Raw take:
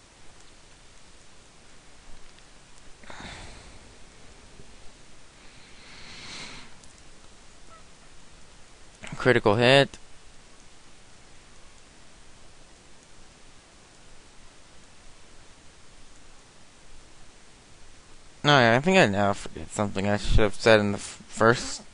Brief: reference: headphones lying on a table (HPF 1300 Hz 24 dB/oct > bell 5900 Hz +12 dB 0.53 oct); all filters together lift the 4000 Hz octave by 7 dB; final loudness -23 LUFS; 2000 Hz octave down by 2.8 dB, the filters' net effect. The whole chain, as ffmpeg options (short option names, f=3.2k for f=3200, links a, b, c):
-af "highpass=f=1.3k:w=0.5412,highpass=f=1.3k:w=1.3066,equalizer=f=2k:t=o:g=-5.5,equalizer=f=4k:t=o:g=7.5,equalizer=f=5.9k:t=o:w=0.53:g=12,volume=2dB"